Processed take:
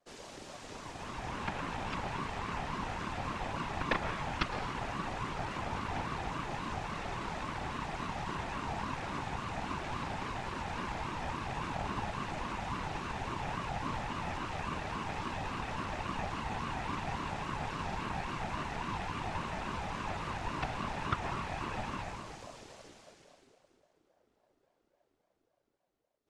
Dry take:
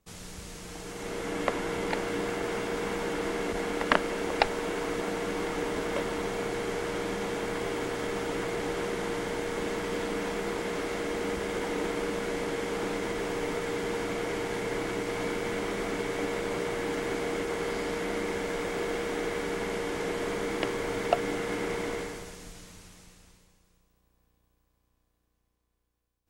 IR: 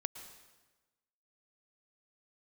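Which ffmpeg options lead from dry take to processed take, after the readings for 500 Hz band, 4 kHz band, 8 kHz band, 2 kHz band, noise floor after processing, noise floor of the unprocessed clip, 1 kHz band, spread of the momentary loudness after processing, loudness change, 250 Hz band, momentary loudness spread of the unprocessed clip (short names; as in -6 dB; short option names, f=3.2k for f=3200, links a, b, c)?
-14.0 dB, -6.0 dB, -10.5 dB, -6.0 dB, -77 dBFS, -74 dBFS, -1.0 dB, 3 LU, -6.5 dB, -8.0 dB, 3 LU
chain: -filter_complex "[0:a]lowpass=6.3k,adynamicequalizer=threshold=0.00141:dfrequency=210:dqfactor=7:tfrequency=210:tqfactor=7:attack=5:release=100:ratio=0.375:range=3.5:mode=cutabove:tftype=bell[a];[1:a]atrim=start_sample=2205[b];[a][b]afir=irnorm=-1:irlink=0,afftfilt=real='hypot(re,im)*cos(2*PI*random(0))':imag='hypot(re,im)*sin(2*PI*random(1))':win_size=512:overlap=0.75,asplit=2[c][d];[d]acompressor=threshold=-48dB:ratio=10,volume=-3dB[e];[c][e]amix=inputs=2:normalize=0,equalizer=f=150:t=o:w=0.36:g=-14,aeval=exprs='val(0)*sin(2*PI*490*n/s+490*0.35/3.6*sin(2*PI*3.6*n/s))':c=same,volume=2.5dB"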